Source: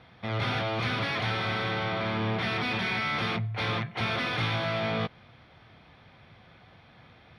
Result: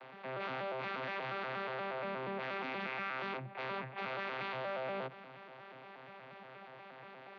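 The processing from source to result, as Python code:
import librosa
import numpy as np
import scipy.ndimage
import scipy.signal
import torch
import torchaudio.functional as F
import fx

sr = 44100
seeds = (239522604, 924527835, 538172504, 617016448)

y = fx.vocoder_arp(x, sr, chord='bare fifth', root=48, every_ms=119)
y = fx.bandpass_edges(y, sr, low_hz=540.0, high_hz=3300.0)
y = fx.env_flatten(y, sr, amount_pct=50)
y = F.gain(torch.from_numpy(y), -2.0).numpy()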